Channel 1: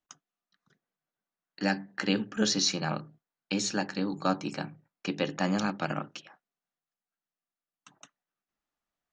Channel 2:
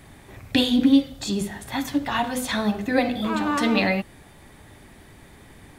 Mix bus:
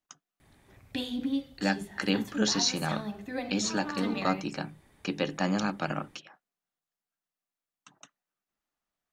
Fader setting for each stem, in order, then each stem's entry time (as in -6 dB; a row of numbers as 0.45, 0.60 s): 0.0, -14.0 dB; 0.00, 0.40 s